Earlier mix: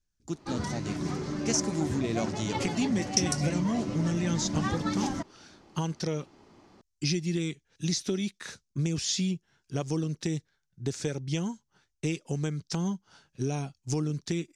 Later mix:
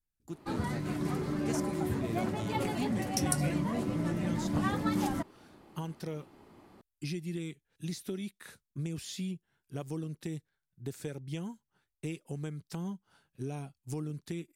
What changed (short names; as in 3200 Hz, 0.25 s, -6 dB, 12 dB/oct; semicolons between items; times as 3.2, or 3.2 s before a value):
speech -7.5 dB; master: remove synth low-pass 6000 Hz, resonance Q 3.1